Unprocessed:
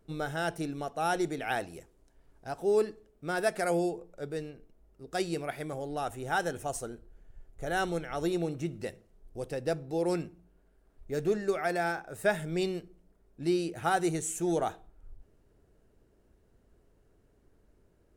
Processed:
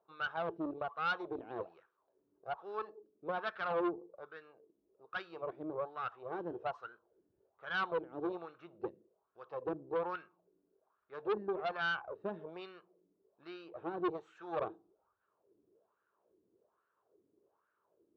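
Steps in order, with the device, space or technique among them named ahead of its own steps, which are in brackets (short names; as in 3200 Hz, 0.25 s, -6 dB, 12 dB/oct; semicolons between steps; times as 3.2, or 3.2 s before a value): wah-wah guitar rig (wah 1.2 Hz 280–1500 Hz, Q 4.5; tube stage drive 37 dB, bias 0.65; speaker cabinet 110–4100 Hz, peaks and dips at 150 Hz -5 dB, 260 Hz -10 dB, 720 Hz -4 dB, 1100 Hz +6 dB, 2000 Hz -8 dB, 3800 Hz +4 dB); gain +8.5 dB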